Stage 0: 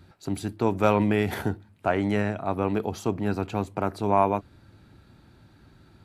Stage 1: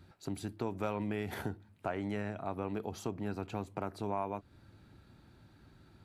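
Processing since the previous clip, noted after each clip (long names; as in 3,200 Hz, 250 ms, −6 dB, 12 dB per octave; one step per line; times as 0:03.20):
downward compressor 2.5 to 1, threshold −30 dBFS, peak gain reduction 10.5 dB
level −5.5 dB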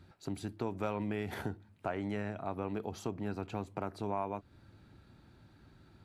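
high-shelf EQ 11,000 Hz −7 dB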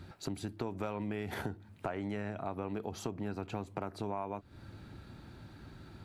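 downward compressor 2.5 to 1, threshold −47 dBFS, peak gain reduction 12 dB
level +8.5 dB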